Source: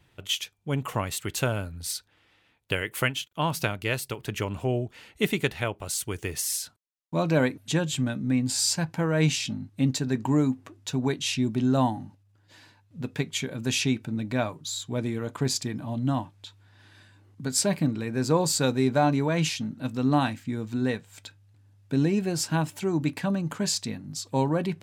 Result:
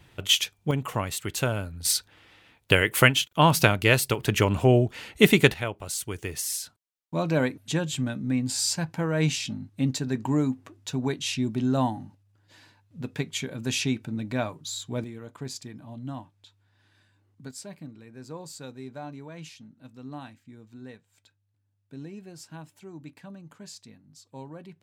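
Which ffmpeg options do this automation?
-af "asetnsamples=n=441:p=0,asendcmd='0.71 volume volume 0dB;1.85 volume volume 8dB;5.54 volume volume -1.5dB;15.04 volume volume -10dB;17.51 volume volume -17dB',volume=2.24"

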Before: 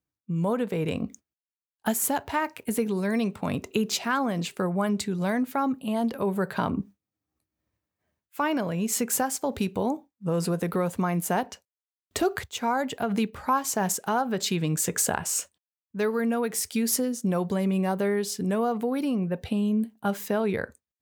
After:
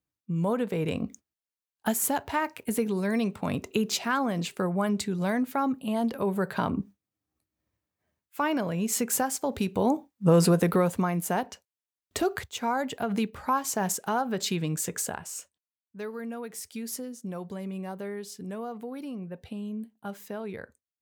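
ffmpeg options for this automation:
-af "volume=2.37,afade=t=in:st=9.68:d=0.59:silence=0.375837,afade=t=out:st=10.27:d=0.86:silence=0.334965,afade=t=out:st=14.52:d=0.78:silence=0.375837"

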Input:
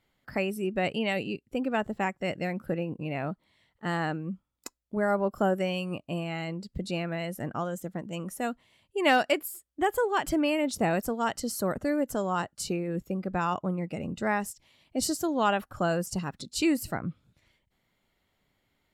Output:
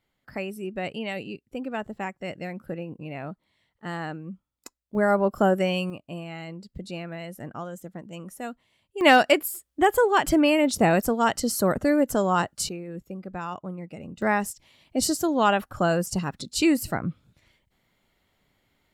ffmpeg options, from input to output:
-af "asetnsamples=n=441:p=0,asendcmd='4.95 volume volume 5dB;5.9 volume volume -3.5dB;9.01 volume volume 6.5dB;12.69 volume volume -5dB;14.22 volume volume 4.5dB',volume=0.708"

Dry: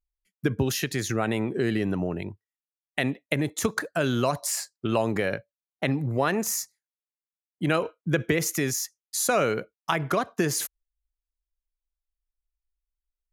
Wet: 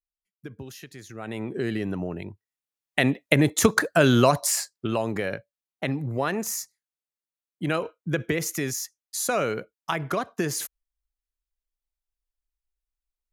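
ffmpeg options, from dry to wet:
-af "volume=2.24,afade=t=in:st=1.13:d=0.41:silence=0.237137,afade=t=in:st=2.29:d=1.15:silence=0.334965,afade=t=out:st=4.17:d=0.79:silence=0.354813"

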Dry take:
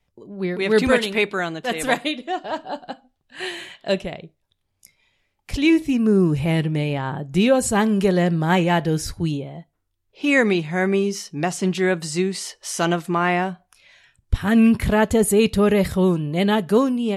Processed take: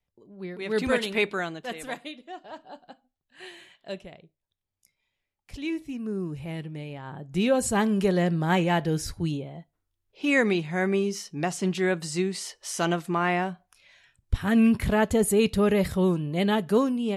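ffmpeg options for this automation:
-af "volume=1.88,afade=t=in:st=0.61:d=0.65:silence=0.398107,afade=t=out:st=1.26:d=0.61:silence=0.298538,afade=t=in:st=7.01:d=0.6:silence=0.334965"

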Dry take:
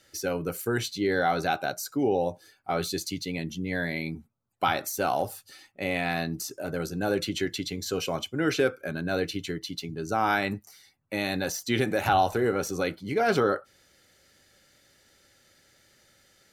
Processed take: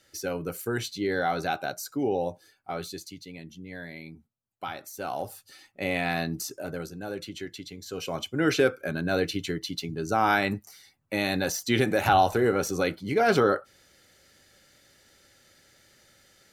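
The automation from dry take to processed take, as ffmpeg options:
-af "volume=9.44,afade=t=out:st=2.28:d=0.87:silence=0.375837,afade=t=in:st=4.88:d=0.94:silence=0.281838,afade=t=out:st=6.48:d=0.5:silence=0.354813,afade=t=in:st=7.87:d=0.56:silence=0.298538"

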